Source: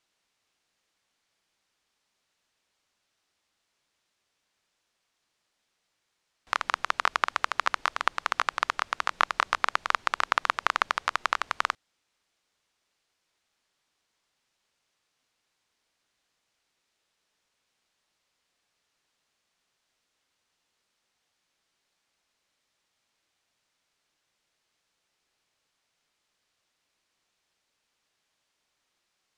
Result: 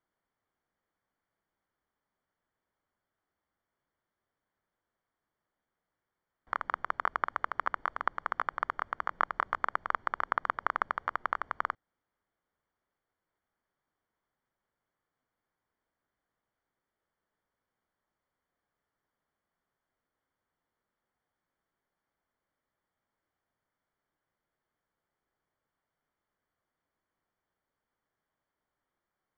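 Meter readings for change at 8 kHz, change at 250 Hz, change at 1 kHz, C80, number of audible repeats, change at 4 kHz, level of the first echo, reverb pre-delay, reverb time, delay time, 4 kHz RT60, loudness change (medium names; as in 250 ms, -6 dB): under -25 dB, -2.5 dB, -4.5 dB, no reverb, no echo, -19.5 dB, no echo, no reverb, no reverb, no echo, no reverb, -6.0 dB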